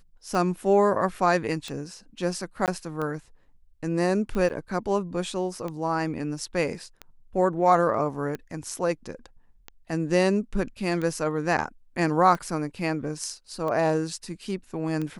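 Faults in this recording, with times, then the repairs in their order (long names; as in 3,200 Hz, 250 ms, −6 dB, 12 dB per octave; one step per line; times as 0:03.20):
scratch tick 45 rpm
0:02.66–0:02.68: drop-out 18 ms
0:04.49–0:04.50: drop-out 9 ms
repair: click removal
repair the gap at 0:02.66, 18 ms
repair the gap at 0:04.49, 9 ms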